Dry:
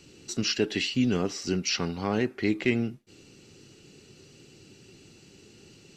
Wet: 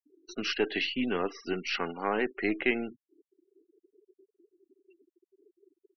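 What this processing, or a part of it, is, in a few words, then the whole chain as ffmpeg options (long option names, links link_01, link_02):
crystal radio: -filter_complex "[0:a]highpass=310,lowpass=3300,aeval=exprs='if(lt(val(0),0),0.708*val(0),val(0))':channel_layout=same,asplit=3[link_01][link_02][link_03];[link_01]afade=type=out:start_time=1.47:duration=0.02[link_04];[link_02]lowpass=5300,afade=type=in:start_time=1.47:duration=0.02,afade=type=out:start_time=2.54:duration=0.02[link_05];[link_03]afade=type=in:start_time=2.54:duration=0.02[link_06];[link_04][link_05][link_06]amix=inputs=3:normalize=0,equalizer=frequency=1400:width_type=o:width=2.2:gain=4.5,afftfilt=real='re*gte(hypot(re,im),0.01)':imag='im*gte(hypot(re,im),0.01)':win_size=1024:overlap=0.75"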